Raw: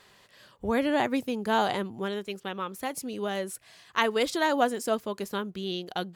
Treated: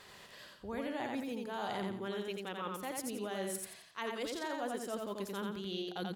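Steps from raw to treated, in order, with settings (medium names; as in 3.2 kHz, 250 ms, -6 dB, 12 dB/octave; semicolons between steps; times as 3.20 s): reverse; compression 6:1, threshold -40 dBFS, peak gain reduction 19.5 dB; reverse; feedback delay 87 ms, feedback 32%, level -3 dB; trim +1.5 dB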